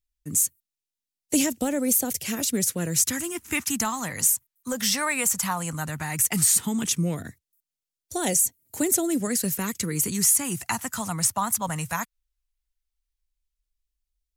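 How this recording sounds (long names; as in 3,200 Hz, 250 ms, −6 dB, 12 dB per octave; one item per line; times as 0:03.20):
phaser sweep stages 2, 0.15 Hz, lowest notch 380–1,100 Hz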